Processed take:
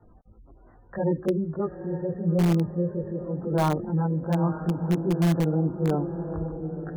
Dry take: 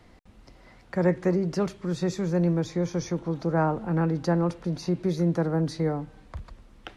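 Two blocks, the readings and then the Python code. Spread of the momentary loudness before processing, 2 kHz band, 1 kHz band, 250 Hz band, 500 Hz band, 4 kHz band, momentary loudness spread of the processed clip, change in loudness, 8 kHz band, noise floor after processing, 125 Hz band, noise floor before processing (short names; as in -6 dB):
10 LU, -3.5 dB, +0.5 dB, +1.0 dB, -0.5 dB, -2.0 dB, 9 LU, +0.5 dB, n/a, -54 dBFS, +2.0 dB, -54 dBFS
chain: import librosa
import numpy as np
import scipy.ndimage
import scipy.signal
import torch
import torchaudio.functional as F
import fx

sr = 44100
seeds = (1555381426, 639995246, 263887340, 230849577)

p1 = scipy.signal.sosfilt(scipy.signal.butter(16, 1800.0, 'lowpass', fs=sr, output='sos'), x)
p2 = fx.spec_gate(p1, sr, threshold_db=-20, keep='strong')
p3 = fx.echo_diffused(p2, sr, ms=904, feedback_pct=41, wet_db=-8)
p4 = fx.chorus_voices(p3, sr, voices=2, hz=0.41, base_ms=19, depth_ms=1.4, mix_pct=60)
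p5 = (np.mod(10.0 ** (17.0 / 20.0) * p4 + 1.0, 2.0) - 1.0) / 10.0 ** (17.0 / 20.0)
y = p4 + (p5 * librosa.db_to_amplitude(-10.5))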